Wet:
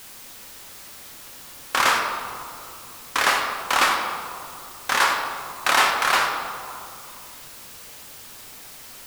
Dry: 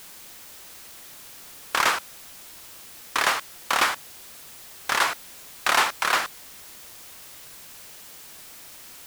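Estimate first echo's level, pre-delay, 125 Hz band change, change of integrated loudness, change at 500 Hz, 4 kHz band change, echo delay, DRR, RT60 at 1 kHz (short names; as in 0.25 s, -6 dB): none, 4 ms, +4.5 dB, +2.5 dB, +4.0 dB, +3.0 dB, none, 1.0 dB, 2.5 s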